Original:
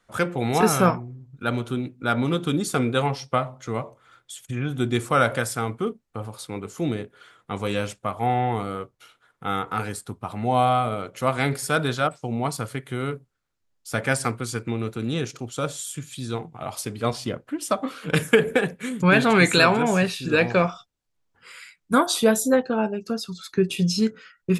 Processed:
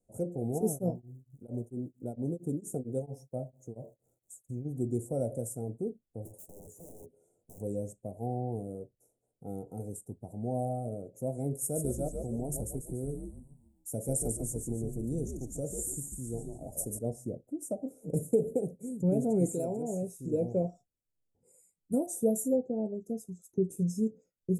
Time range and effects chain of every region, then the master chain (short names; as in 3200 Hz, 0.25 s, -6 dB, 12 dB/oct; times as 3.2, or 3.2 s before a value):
0.58–4.64 crackle 560/s -53 dBFS + beating tremolo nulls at 4.4 Hz
6.25–7.61 compressor, threshold -32 dBFS + wrapped overs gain 34 dB + doubler 12 ms -6 dB
11.61–16.99 high shelf 6300 Hz +10.5 dB + frequency-shifting echo 0.143 s, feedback 41%, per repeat -92 Hz, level -5 dB
19.52–20.19 low shelf 410 Hz -6.5 dB + hard clip -5 dBFS
whole clip: inverse Chebyshev band-stop 1100–4600 Hz, stop band 40 dB; dynamic EQ 900 Hz, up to -4 dB, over -45 dBFS, Q 2.5; gain -8 dB